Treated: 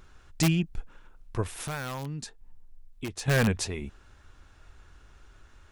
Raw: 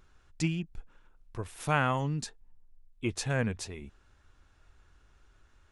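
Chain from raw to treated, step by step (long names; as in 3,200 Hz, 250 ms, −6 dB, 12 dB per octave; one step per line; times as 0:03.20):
in parallel at −3.5 dB: wrap-around overflow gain 22.5 dB
0:01.53–0:03.28: on the sum: downward compressor 3 to 1, threshold −40 dBFS, peak gain reduction 14 dB
level +3.5 dB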